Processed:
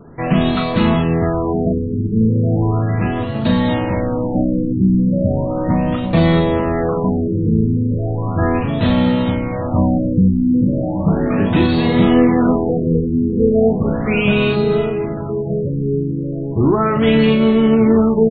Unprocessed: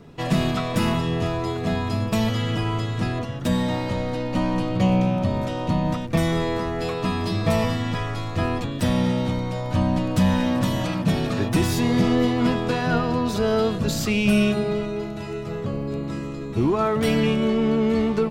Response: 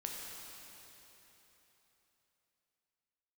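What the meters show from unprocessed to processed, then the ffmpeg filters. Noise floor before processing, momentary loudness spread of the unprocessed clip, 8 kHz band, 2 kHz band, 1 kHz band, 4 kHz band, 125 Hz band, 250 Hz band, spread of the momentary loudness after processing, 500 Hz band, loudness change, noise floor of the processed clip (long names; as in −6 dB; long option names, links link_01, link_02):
−31 dBFS, 7 LU, below −40 dB, +4.0 dB, +4.5 dB, +2.0 dB, +6.5 dB, +7.5 dB, 7 LU, +7.5 dB, +7.0 dB, −22 dBFS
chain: -filter_complex "[0:a]asplit=2[link_01][link_02];[link_02]adelay=36,volume=-5.5dB[link_03];[link_01][link_03]amix=inputs=2:normalize=0,asplit=2[link_04][link_05];[link_05]adelay=1224,volume=-10dB,highshelf=frequency=4000:gain=-27.6[link_06];[link_04][link_06]amix=inputs=2:normalize=0,afftfilt=real='re*lt(b*sr/1024,450*pow(4600/450,0.5+0.5*sin(2*PI*0.36*pts/sr)))':imag='im*lt(b*sr/1024,450*pow(4600/450,0.5+0.5*sin(2*PI*0.36*pts/sr)))':win_size=1024:overlap=0.75,volume=5.5dB"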